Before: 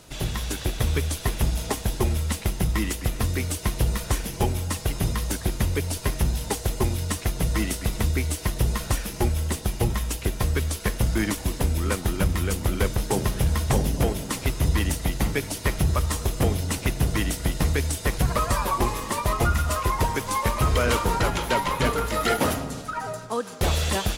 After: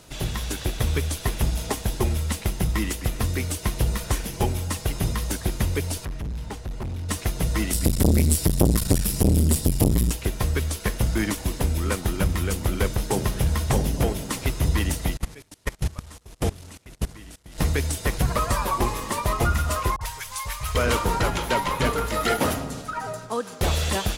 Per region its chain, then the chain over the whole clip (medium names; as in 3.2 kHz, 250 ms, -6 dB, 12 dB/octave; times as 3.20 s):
6.05–7.09 s: low-pass 1.4 kHz 6 dB/octave + peaking EQ 480 Hz -7 dB 1.9 oct + hard clipper -27.5 dBFS
7.73–10.11 s: tone controls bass +11 dB, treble +13 dB + band-stop 6.3 kHz, Q 8.4 + transformer saturation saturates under 410 Hz
15.17–17.58 s: one-bit delta coder 64 kbps, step -25 dBFS + expander -20 dBFS + level held to a coarse grid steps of 21 dB
19.96–20.75 s: amplifier tone stack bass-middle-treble 10-0-10 + phase dispersion highs, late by 50 ms, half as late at 800 Hz
whole clip: none